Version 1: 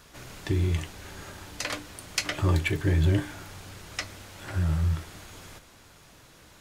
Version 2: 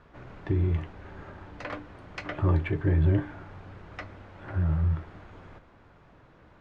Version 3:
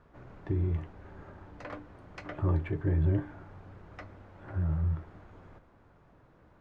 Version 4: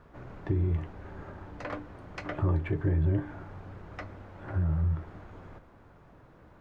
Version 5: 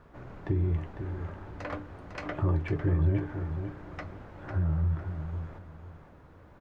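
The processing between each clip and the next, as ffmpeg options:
ffmpeg -i in.wav -af "lowpass=1500" out.wav
ffmpeg -i in.wav -af "equalizer=frequency=3100:width_type=o:width=2:gain=-6,volume=-4dB" out.wav
ffmpeg -i in.wav -af "acompressor=threshold=-31dB:ratio=2,volume=5dB" out.wav
ffmpeg -i in.wav -af "aecho=1:1:502|1004|1506:0.376|0.0902|0.0216" out.wav

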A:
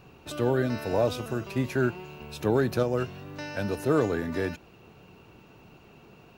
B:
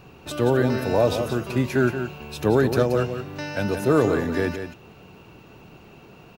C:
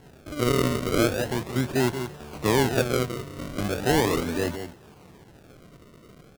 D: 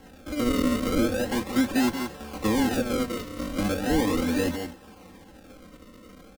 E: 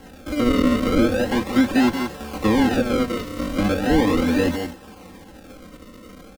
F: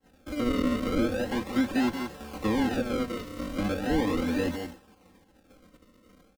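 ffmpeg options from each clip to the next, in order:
ffmpeg -i in.wav -af "aecho=1:1:177:0.376,volume=5dB" out.wav
ffmpeg -i in.wav -af "acrusher=samples=36:mix=1:aa=0.000001:lfo=1:lforange=36:lforate=0.38,volume=-3dB" out.wav
ffmpeg -i in.wav -filter_complex "[0:a]aecho=1:1:3.8:0.94,acrossover=split=320[link_01][link_02];[link_02]alimiter=limit=-17.5dB:level=0:latency=1:release=127[link_03];[link_01][link_03]amix=inputs=2:normalize=0" out.wav
ffmpeg -i in.wav -filter_complex "[0:a]acrossover=split=4400[link_01][link_02];[link_02]acompressor=threshold=-43dB:ratio=4:attack=1:release=60[link_03];[link_01][link_03]amix=inputs=2:normalize=0,volume=6dB" out.wav
ffmpeg -i in.wav -af "agate=range=-33dB:threshold=-35dB:ratio=3:detection=peak,volume=-8.5dB" out.wav

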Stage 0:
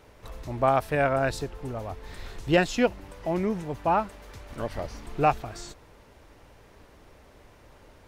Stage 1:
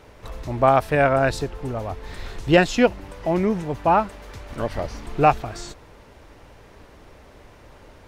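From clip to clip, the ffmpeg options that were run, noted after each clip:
ffmpeg -i in.wav -af "highshelf=frequency=8800:gain=-5.5,volume=6dB" out.wav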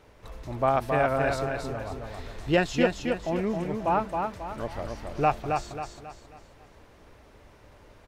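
ffmpeg -i in.wav -af "aecho=1:1:270|540|810|1080|1350:0.596|0.238|0.0953|0.0381|0.0152,volume=-7.5dB" out.wav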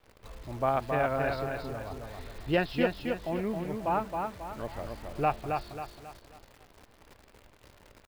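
ffmpeg -i in.wav -af "aresample=11025,aresample=44100,acrusher=bits=9:dc=4:mix=0:aa=0.000001,volume=-4dB" out.wav

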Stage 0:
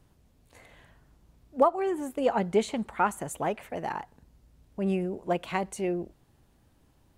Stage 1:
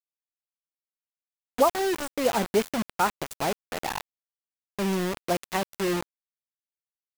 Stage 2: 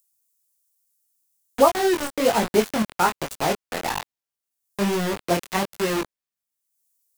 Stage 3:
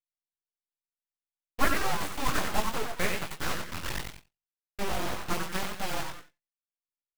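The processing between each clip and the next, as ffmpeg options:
ffmpeg -i in.wav -af "acrusher=bits=4:mix=0:aa=0.000001,volume=1dB" out.wav
ffmpeg -i in.wav -filter_complex "[0:a]flanger=delay=18:depth=5.9:speed=1.2,acrossover=split=460|6700[link_01][link_02][link_03];[link_03]acompressor=mode=upward:threshold=-58dB:ratio=2.5[link_04];[link_01][link_02][link_04]amix=inputs=3:normalize=0,volume=7.5dB" out.wav
ffmpeg -i in.wav -filter_complex "[0:a]asplit=6[link_01][link_02][link_03][link_04][link_05][link_06];[link_02]adelay=91,afreqshift=130,volume=-4.5dB[link_07];[link_03]adelay=182,afreqshift=260,volume=-13.1dB[link_08];[link_04]adelay=273,afreqshift=390,volume=-21.8dB[link_09];[link_05]adelay=364,afreqshift=520,volume=-30.4dB[link_10];[link_06]adelay=455,afreqshift=650,volume=-39dB[link_11];[link_01][link_07][link_08][link_09][link_10][link_11]amix=inputs=6:normalize=0,agate=range=-33dB:threshold=-34dB:ratio=3:detection=peak,aeval=exprs='abs(val(0))':channel_layout=same,volume=-6.5dB" out.wav

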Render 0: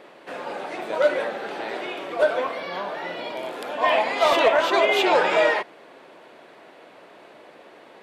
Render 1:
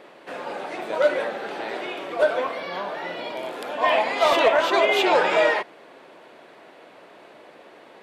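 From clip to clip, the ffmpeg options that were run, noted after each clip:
ffmpeg -i in.wav -af anull out.wav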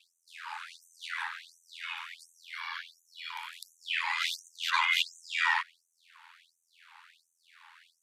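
ffmpeg -i in.wav -af "aeval=exprs='val(0)*sin(2*PI*42*n/s)':channel_layout=same,afftfilt=real='re*gte(b*sr/1024,780*pow(6000/780,0.5+0.5*sin(2*PI*1.4*pts/sr)))':imag='im*gte(b*sr/1024,780*pow(6000/780,0.5+0.5*sin(2*PI*1.4*pts/sr)))':win_size=1024:overlap=0.75" out.wav

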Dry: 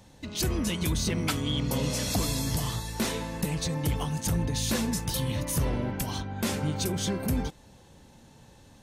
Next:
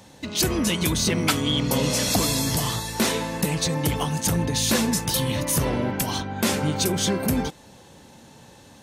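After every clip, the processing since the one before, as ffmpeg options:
ffmpeg -i in.wav -af "highpass=frequency=180:poles=1,volume=8dB" out.wav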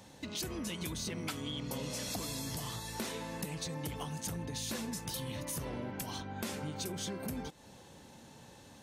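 ffmpeg -i in.wav -af "acompressor=threshold=-33dB:ratio=3,volume=-6.5dB" out.wav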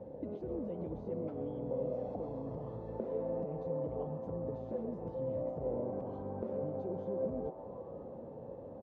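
ffmpeg -i in.wav -filter_complex "[0:a]acompressor=threshold=-43dB:ratio=6,lowpass=frequency=520:width_type=q:width=4.9,asplit=7[link_01][link_02][link_03][link_04][link_05][link_06][link_07];[link_02]adelay=131,afreqshift=120,volume=-13.5dB[link_08];[link_03]adelay=262,afreqshift=240,volume=-18.5dB[link_09];[link_04]adelay=393,afreqshift=360,volume=-23.6dB[link_10];[link_05]adelay=524,afreqshift=480,volume=-28.6dB[link_11];[link_06]adelay=655,afreqshift=600,volume=-33.6dB[link_12];[link_07]adelay=786,afreqshift=720,volume=-38.7dB[link_13];[link_01][link_08][link_09][link_10][link_11][link_12][link_13]amix=inputs=7:normalize=0,volume=3.5dB" out.wav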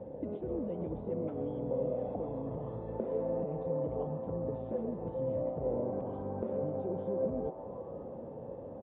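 ffmpeg -i in.wav -af "aresample=8000,aresample=44100,volume=3dB" out.wav

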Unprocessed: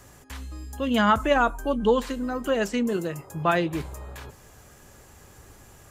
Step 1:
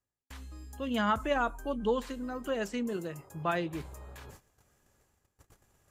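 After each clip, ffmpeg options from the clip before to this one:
ffmpeg -i in.wav -af "agate=range=-40dB:threshold=-44dB:ratio=16:detection=peak,areverse,acompressor=mode=upward:threshold=-36dB:ratio=2.5,areverse,volume=-8.5dB" out.wav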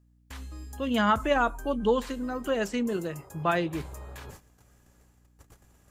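ffmpeg -i in.wav -af "aeval=exprs='val(0)+0.000501*(sin(2*PI*60*n/s)+sin(2*PI*2*60*n/s)/2+sin(2*PI*3*60*n/s)/3+sin(2*PI*4*60*n/s)/4+sin(2*PI*5*60*n/s)/5)':channel_layout=same,volume=5dB" out.wav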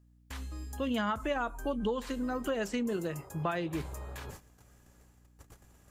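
ffmpeg -i in.wav -af "acompressor=threshold=-29dB:ratio=6" out.wav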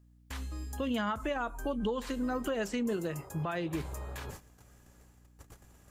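ffmpeg -i in.wav -af "alimiter=level_in=1.5dB:limit=-24dB:level=0:latency=1:release=157,volume=-1.5dB,volume=1.5dB" out.wav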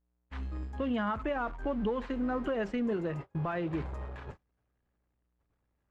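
ffmpeg -i in.wav -af "aeval=exprs='val(0)+0.5*0.00794*sgn(val(0))':channel_layout=same,lowpass=2200,agate=range=-32dB:threshold=-38dB:ratio=16:detection=peak" out.wav

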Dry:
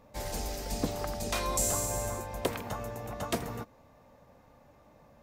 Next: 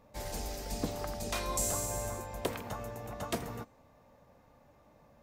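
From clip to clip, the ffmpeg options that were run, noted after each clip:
ffmpeg -i in.wav -af "bandreject=frequency=259.6:width_type=h:width=4,bandreject=frequency=519.2:width_type=h:width=4,bandreject=frequency=778.8:width_type=h:width=4,bandreject=frequency=1038.4:width_type=h:width=4,bandreject=frequency=1298:width_type=h:width=4,bandreject=frequency=1557.6:width_type=h:width=4,bandreject=frequency=1817.2:width_type=h:width=4,bandreject=frequency=2076.8:width_type=h:width=4,bandreject=frequency=2336.4:width_type=h:width=4,bandreject=frequency=2596:width_type=h:width=4,bandreject=frequency=2855.6:width_type=h:width=4,bandreject=frequency=3115.2:width_type=h:width=4,bandreject=frequency=3374.8:width_type=h:width=4,bandreject=frequency=3634.4:width_type=h:width=4,bandreject=frequency=3894:width_type=h:width=4,bandreject=frequency=4153.6:width_type=h:width=4,bandreject=frequency=4413.2:width_type=h:width=4,bandreject=frequency=4672.8:width_type=h:width=4,bandreject=frequency=4932.4:width_type=h:width=4,bandreject=frequency=5192:width_type=h:width=4,bandreject=frequency=5451.6:width_type=h:width=4,bandreject=frequency=5711.2:width_type=h:width=4,bandreject=frequency=5970.8:width_type=h:width=4,bandreject=frequency=6230.4:width_type=h:width=4,bandreject=frequency=6490:width_type=h:width=4,bandreject=frequency=6749.6:width_type=h:width=4,bandreject=frequency=7009.2:width_type=h:width=4,bandreject=frequency=7268.8:width_type=h:width=4,bandreject=frequency=7528.4:width_type=h:width=4,bandreject=frequency=7788:width_type=h:width=4,bandreject=frequency=8047.6:width_type=h:width=4,bandreject=frequency=8307.2:width_type=h:width=4,bandreject=frequency=8566.8:width_type=h:width=4,bandreject=frequency=8826.4:width_type=h:width=4,volume=-3dB" out.wav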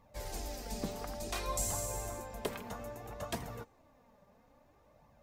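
ffmpeg -i in.wav -af "flanger=delay=0.9:depth=4.3:regen=37:speed=0.59:shape=triangular,volume=1dB" out.wav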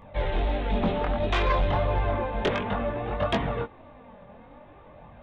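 ffmpeg -i in.wav -af "aresample=8000,aresample=44100,flanger=delay=19.5:depth=4.2:speed=1.5,aeval=exprs='0.0562*sin(PI/2*2.51*val(0)/0.0562)':channel_layout=same,volume=7dB" out.wav

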